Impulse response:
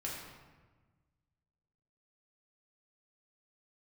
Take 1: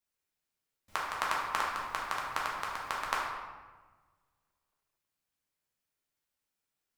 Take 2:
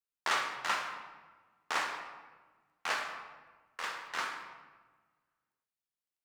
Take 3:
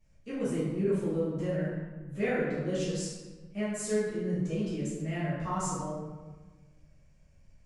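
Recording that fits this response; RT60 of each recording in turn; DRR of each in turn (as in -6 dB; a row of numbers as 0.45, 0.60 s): 1; 1.3, 1.3, 1.3 s; -5.0, 2.0, -13.0 dB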